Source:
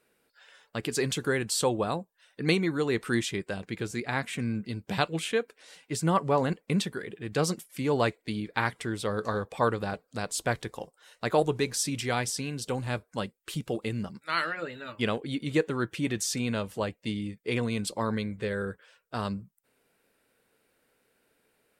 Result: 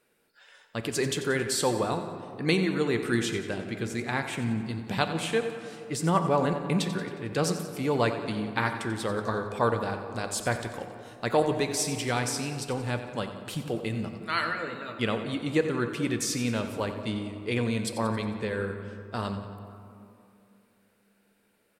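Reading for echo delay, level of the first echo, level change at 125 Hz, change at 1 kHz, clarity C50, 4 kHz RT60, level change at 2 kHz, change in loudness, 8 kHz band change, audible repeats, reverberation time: 90 ms, -12.0 dB, +1.0 dB, +1.0 dB, 7.0 dB, 1.2 s, +1.0 dB, +1.0 dB, +0.5 dB, 3, 2.6 s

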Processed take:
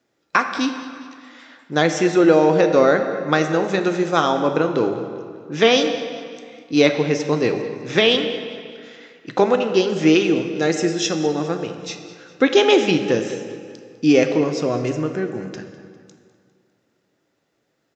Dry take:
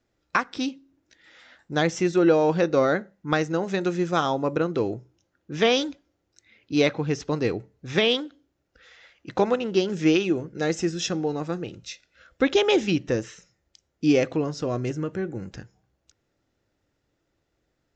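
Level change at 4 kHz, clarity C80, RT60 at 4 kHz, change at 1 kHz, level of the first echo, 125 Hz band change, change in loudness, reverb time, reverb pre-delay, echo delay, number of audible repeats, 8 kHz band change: +6.5 dB, 8.5 dB, 1.6 s, +6.5 dB, -16.5 dB, +3.0 dB, +6.0 dB, 2.1 s, 4 ms, 0.201 s, 4, n/a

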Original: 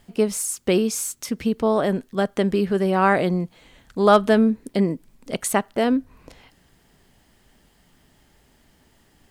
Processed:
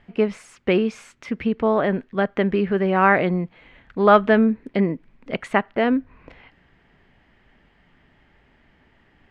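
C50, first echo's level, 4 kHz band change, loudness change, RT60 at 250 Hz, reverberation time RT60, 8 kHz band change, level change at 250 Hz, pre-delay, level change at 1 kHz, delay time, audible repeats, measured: none, none, -3.5 dB, +0.5 dB, none, none, under -20 dB, 0.0 dB, none, +1.5 dB, none, none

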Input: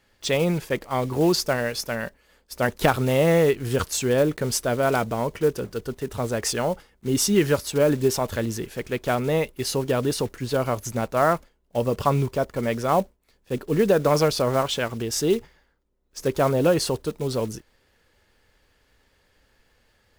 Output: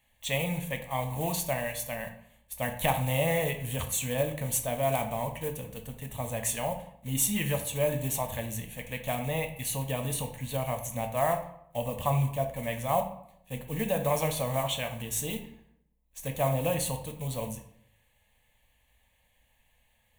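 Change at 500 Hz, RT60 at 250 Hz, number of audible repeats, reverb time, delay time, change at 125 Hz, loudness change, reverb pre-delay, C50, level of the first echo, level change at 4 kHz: -9.5 dB, 0.80 s, none, 0.70 s, none, -4.5 dB, -7.0 dB, 8 ms, 9.5 dB, none, -7.5 dB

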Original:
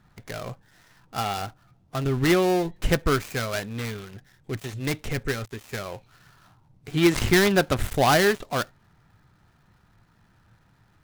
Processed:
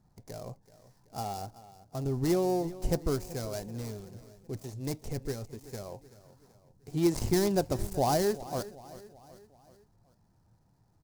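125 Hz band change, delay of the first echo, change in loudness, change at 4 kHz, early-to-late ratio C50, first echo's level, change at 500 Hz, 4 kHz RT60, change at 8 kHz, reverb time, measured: -6.5 dB, 0.38 s, -7.5 dB, -13.0 dB, none, -17.0 dB, -6.5 dB, none, -6.5 dB, none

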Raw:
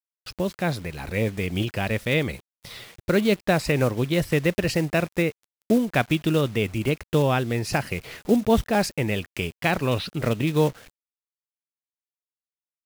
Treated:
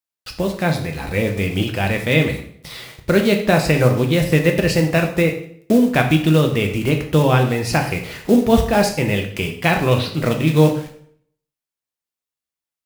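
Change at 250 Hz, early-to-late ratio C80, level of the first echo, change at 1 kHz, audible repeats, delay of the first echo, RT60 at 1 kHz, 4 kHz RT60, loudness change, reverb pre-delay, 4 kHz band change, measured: +6.5 dB, 12.0 dB, none, +6.0 dB, none, none, 0.55 s, 0.55 s, +6.5 dB, 5 ms, +6.0 dB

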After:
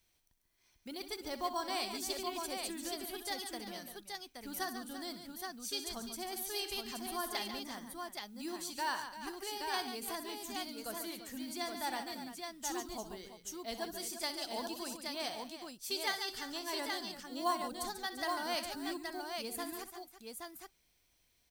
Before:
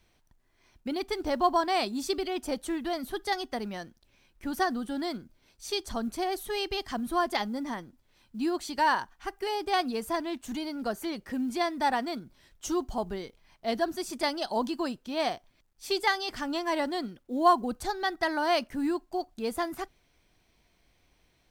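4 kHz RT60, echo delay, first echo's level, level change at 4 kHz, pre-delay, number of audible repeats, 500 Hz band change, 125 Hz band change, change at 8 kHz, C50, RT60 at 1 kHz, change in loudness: none, 63 ms, -12.5 dB, -3.5 dB, none, 4, -11.5 dB, -12.0 dB, +1.5 dB, none, none, -9.0 dB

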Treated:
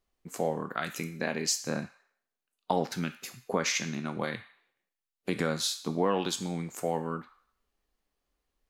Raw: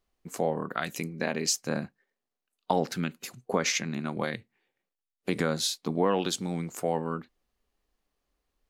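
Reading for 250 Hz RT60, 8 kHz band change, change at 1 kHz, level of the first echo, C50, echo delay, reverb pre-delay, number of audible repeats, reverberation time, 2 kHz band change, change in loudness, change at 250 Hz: 0.60 s, -1.5 dB, -1.5 dB, none, 12.5 dB, none, 6 ms, none, 0.65 s, -1.0 dB, -1.5 dB, -2.0 dB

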